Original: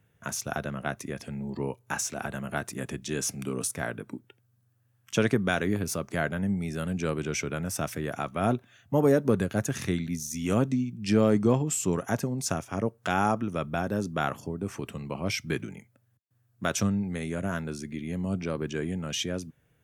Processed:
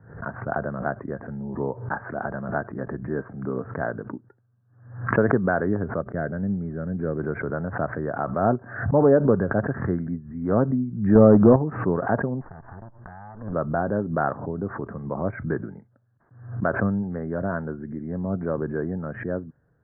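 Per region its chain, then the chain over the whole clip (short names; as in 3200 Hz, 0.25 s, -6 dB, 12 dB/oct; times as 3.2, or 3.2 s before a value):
6.01–7.19 switching dead time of 0.084 ms + gate -39 dBFS, range -22 dB + bell 990 Hz -11.5 dB 1.2 oct
11.15–11.56 tilt -1.5 dB/oct + notches 60/120/180 Hz + sample leveller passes 1
12.41–13.53 minimum comb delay 1.1 ms + compressor 16:1, threshold -38 dBFS
whole clip: steep low-pass 1700 Hz 72 dB/oct; dynamic EQ 610 Hz, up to +5 dB, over -41 dBFS, Q 1.1; backwards sustainer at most 92 dB/s; gain +2 dB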